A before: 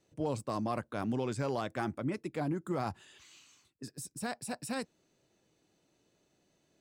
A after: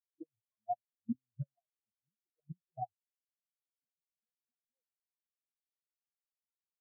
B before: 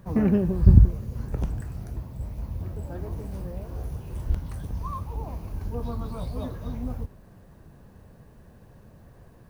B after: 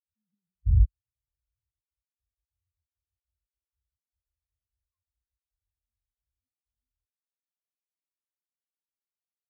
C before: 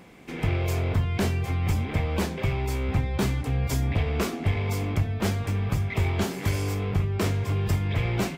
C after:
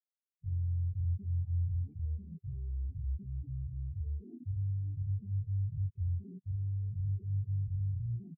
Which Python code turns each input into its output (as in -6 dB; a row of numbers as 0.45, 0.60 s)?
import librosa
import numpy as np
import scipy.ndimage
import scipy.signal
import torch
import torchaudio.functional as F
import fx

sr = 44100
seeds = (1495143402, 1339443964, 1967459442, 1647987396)

y = fx.env_flanger(x, sr, rest_ms=9.0, full_db=-24.5)
y = fx.level_steps(y, sr, step_db=18)
y = fx.spectral_expand(y, sr, expansion=4.0)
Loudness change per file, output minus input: -8.0, +1.5, -10.0 LU